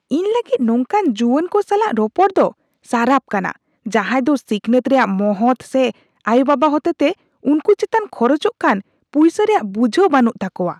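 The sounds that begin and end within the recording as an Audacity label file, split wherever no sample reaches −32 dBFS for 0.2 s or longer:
2.890000	3.520000	sound
3.860000	5.910000	sound
6.250000	7.130000	sound
7.450000	8.810000	sound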